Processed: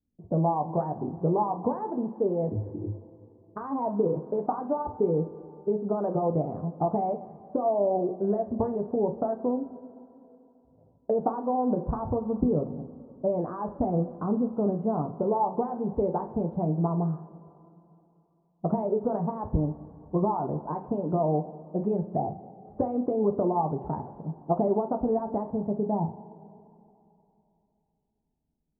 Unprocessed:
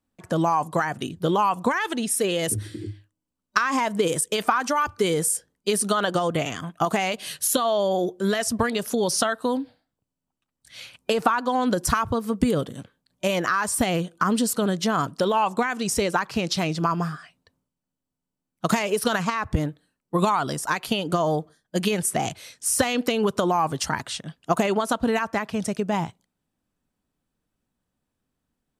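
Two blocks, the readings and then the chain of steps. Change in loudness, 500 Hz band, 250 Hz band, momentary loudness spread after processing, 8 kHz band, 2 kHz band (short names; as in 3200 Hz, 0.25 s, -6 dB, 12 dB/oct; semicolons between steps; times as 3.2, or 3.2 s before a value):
-4.5 dB, -2.0 dB, -2.5 dB, 9 LU, under -40 dB, under -30 dB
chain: low-pass opened by the level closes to 300 Hz, open at -19 dBFS; Chebyshev low-pass 860 Hz, order 4; in parallel at -1 dB: compressor, threshold -30 dBFS, peak gain reduction 14 dB; on the sum: two-slope reverb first 0.31 s, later 3 s, from -18 dB, DRR 4 dB; gain -6 dB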